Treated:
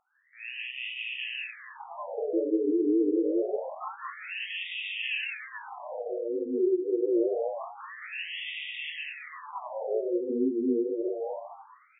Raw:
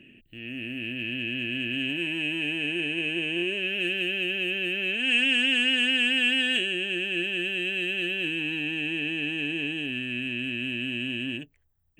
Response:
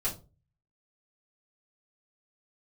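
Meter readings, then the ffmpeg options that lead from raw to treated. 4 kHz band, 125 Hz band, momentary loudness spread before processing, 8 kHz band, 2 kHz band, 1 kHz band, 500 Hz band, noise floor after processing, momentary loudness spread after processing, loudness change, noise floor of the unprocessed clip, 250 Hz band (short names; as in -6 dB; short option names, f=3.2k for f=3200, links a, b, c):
-13.5 dB, under -25 dB, 9 LU, under -30 dB, -11.5 dB, +10.5 dB, +8.0 dB, -55 dBFS, 14 LU, -5.0 dB, -61 dBFS, +1.0 dB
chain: -filter_complex "[0:a]equalizer=f=400:t=o:w=1.2:g=13,acrossover=split=360[a][b];[b]acompressor=threshold=-37dB:ratio=2.5[c];[a][c]amix=inputs=2:normalize=0,aeval=exprs='0.168*sin(PI/2*2.51*val(0)/0.168)':c=same,asplit=8[d][e][f][g][h][i][j][k];[e]adelay=211,afreqshift=110,volume=-5dB[l];[f]adelay=422,afreqshift=220,volume=-10.5dB[m];[g]adelay=633,afreqshift=330,volume=-16dB[n];[h]adelay=844,afreqshift=440,volume=-21.5dB[o];[i]adelay=1055,afreqshift=550,volume=-27.1dB[p];[j]adelay=1266,afreqshift=660,volume=-32.6dB[q];[k]adelay=1477,afreqshift=770,volume=-38.1dB[r];[d][l][m][n][o][p][q][r]amix=inputs=8:normalize=0,flanger=delay=18:depth=5.9:speed=2,afftfilt=real='re*between(b*sr/1024,330*pow(2700/330,0.5+0.5*sin(2*PI*0.26*pts/sr))/1.41,330*pow(2700/330,0.5+0.5*sin(2*PI*0.26*pts/sr))*1.41)':imag='im*between(b*sr/1024,330*pow(2700/330,0.5+0.5*sin(2*PI*0.26*pts/sr))/1.41,330*pow(2700/330,0.5+0.5*sin(2*PI*0.26*pts/sr))*1.41)':win_size=1024:overlap=0.75,volume=-4.5dB"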